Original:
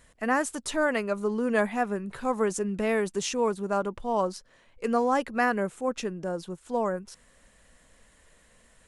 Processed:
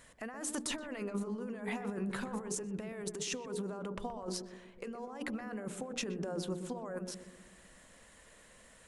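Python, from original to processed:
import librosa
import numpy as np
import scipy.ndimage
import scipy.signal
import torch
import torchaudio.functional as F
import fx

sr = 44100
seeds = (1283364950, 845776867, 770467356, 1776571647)

y = fx.low_shelf(x, sr, hz=73.0, db=-9.0)
y = fx.hum_notches(y, sr, base_hz=60, count=8)
y = fx.over_compress(y, sr, threshold_db=-36.0, ratio=-1.0)
y = fx.echo_filtered(y, sr, ms=124, feedback_pct=61, hz=820.0, wet_db=-7.5)
y = y * librosa.db_to_amplitude(-5.0)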